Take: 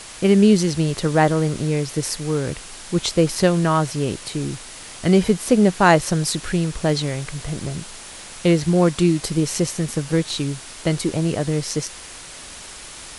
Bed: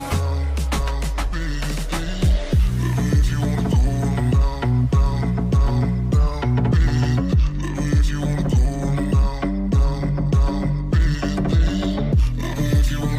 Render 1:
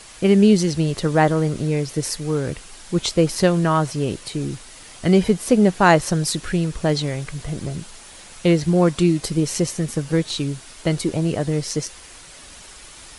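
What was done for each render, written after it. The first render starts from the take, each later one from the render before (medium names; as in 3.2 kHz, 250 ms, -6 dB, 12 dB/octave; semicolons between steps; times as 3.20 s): noise reduction 6 dB, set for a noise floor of -38 dBFS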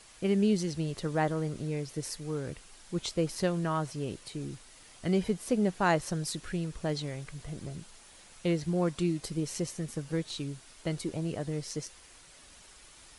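trim -12.5 dB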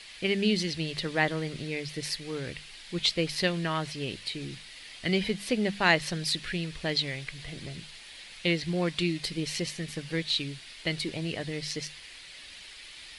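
high-order bell 2.9 kHz +13 dB; hum notches 50/100/150/200 Hz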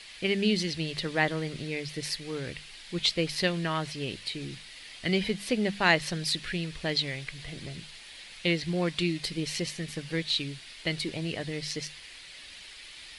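no audible change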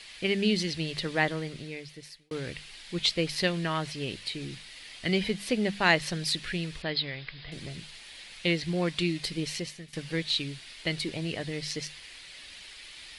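1.20–2.31 s: fade out; 6.82–7.52 s: rippled Chebyshev low-pass 5.1 kHz, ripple 3 dB; 9.44–9.93 s: fade out, to -16 dB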